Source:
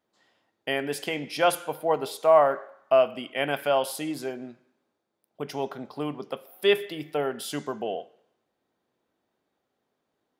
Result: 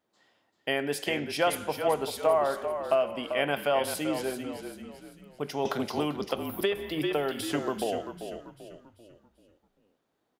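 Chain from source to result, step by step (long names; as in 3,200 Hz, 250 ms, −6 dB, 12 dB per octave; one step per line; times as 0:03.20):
downward compressor, threshold −21 dBFS, peak gain reduction 8.5 dB
echo with shifted repeats 390 ms, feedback 41%, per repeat −39 Hz, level −8.5 dB
0:05.65–0:07.84: multiband upward and downward compressor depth 100%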